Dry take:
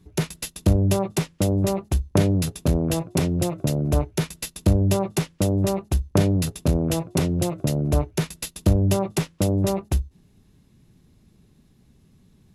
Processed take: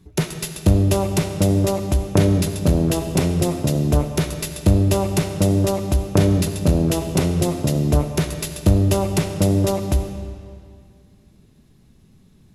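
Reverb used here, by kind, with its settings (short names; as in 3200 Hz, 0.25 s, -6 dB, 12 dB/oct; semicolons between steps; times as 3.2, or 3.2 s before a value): digital reverb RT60 2.1 s, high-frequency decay 0.85×, pre-delay 25 ms, DRR 7 dB; gain +3 dB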